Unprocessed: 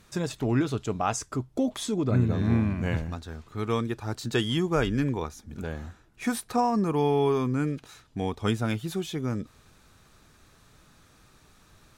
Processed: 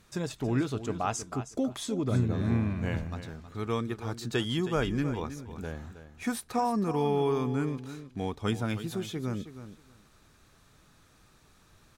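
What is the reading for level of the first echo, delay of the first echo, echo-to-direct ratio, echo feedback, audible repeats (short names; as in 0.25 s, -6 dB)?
-12.0 dB, 0.318 s, -12.0 dB, 16%, 2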